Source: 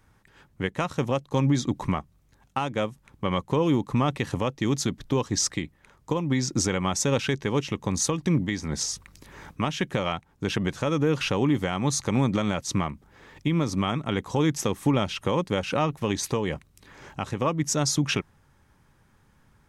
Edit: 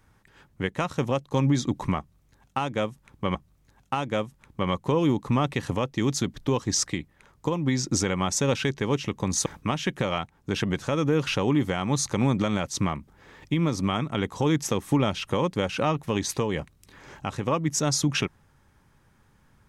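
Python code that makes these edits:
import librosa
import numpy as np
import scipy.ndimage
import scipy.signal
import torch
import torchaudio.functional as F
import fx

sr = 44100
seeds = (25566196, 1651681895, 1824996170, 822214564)

y = fx.edit(x, sr, fx.repeat(start_s=1.99, length_s=1.36, count=2),
    fx.cut(start_s=8.1, length_s=1.3), tone=tone)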